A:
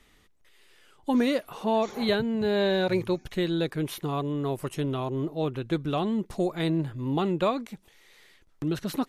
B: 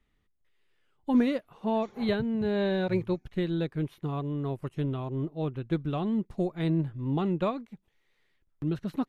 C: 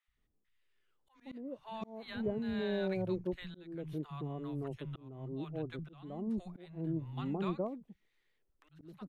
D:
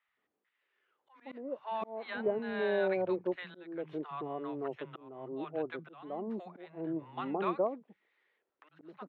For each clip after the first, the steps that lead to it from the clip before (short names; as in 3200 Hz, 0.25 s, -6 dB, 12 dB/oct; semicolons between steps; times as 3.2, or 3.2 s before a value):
tone controls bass +7 dB, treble -9 dB; upward expander 1.5:1, over -45 dBFS; gain -2 dB
three bands offset in time highs, lows, mids 70/170 ms, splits 150/860 Hz; auto swell 0.407 s; gain -6 dB
BPF 460–2100 Hz; gain +9 dB